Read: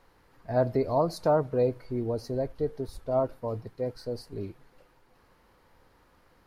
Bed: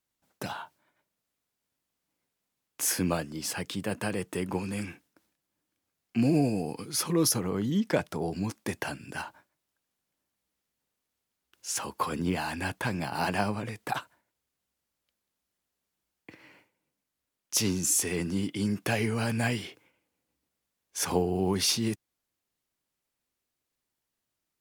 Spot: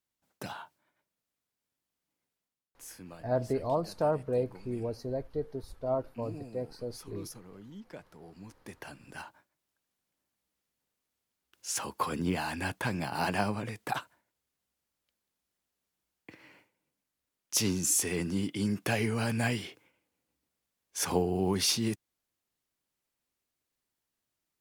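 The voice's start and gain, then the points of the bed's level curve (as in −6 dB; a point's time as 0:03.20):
2.75 s, −4.5 dB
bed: 0:02.37 −4.5 dB
0:02.85 −20 dB
0:08.20 −20 dB
0:09.65 −1.5 dB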